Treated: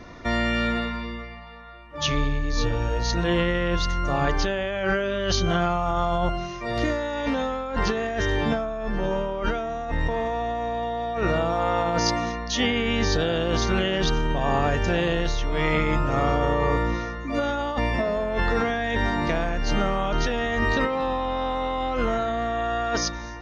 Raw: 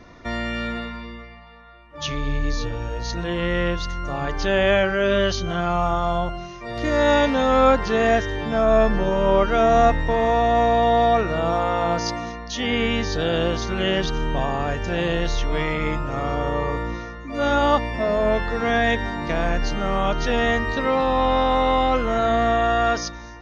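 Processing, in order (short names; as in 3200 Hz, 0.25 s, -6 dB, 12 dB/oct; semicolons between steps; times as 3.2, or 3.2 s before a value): negative-ratio compressor -24 dBFS, ratio -1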